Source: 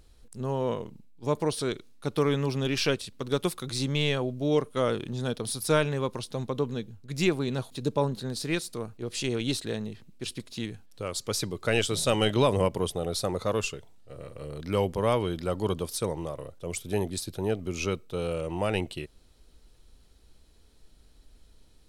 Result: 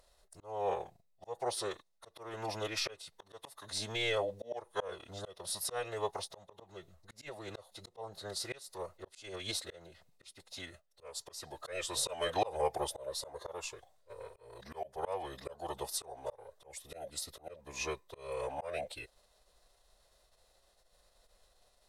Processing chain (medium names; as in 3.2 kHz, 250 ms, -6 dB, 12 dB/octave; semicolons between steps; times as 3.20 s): band-stop 2.9 kHz, Q 6.5; formant-preserving pitch shift -4 st; resonant low shelf 410 Hz -12 dB, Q 3; slow attack 329 ms; trim -2 dB